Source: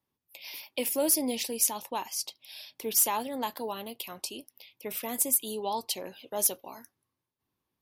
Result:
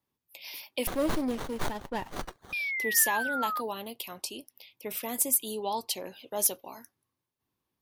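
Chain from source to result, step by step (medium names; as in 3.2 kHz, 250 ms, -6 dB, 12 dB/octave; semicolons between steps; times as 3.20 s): 2.23–3.61 s: painted sound fall 1.2–3 kHz -32 dBFS; 0.87–2.53 s: sliding maximum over 17 samples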